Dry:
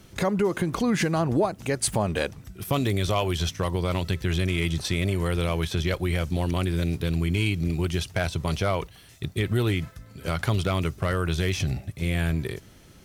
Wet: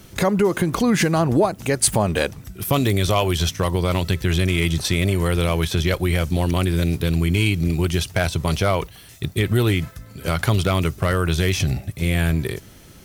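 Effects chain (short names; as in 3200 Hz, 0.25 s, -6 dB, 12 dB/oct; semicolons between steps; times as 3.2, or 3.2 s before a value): high shelf 11000 Hz +8.5 dB; gain +5.5 dB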